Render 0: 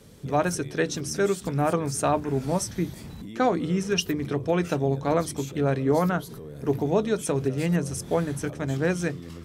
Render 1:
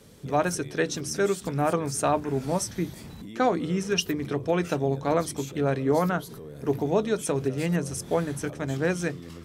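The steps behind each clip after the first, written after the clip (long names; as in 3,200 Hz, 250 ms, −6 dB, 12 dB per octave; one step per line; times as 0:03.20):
low-shelf EQ 190 Hz −4 dB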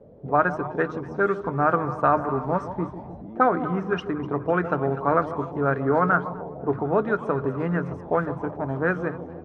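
echo with a time of its own for lows and highs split 1,000 Hz, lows 149 ms, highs 250 ms, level −12 dB
envelope-controlled low-pass 610–1,400 Hz up, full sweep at −21 dBFS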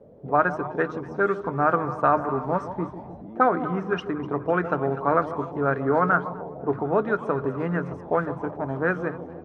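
low-shelf EQ 110 Hz −6 dB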